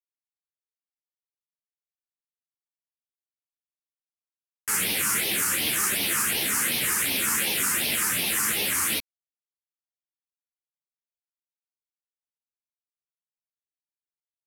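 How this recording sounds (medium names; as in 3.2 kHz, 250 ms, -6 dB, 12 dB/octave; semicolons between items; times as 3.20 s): phasing stages 4, 2.7 Hz, lowest notch 590–1300 Hz; a quantiser's noise floor 8-bit, dither none; a shimmering, thickened sound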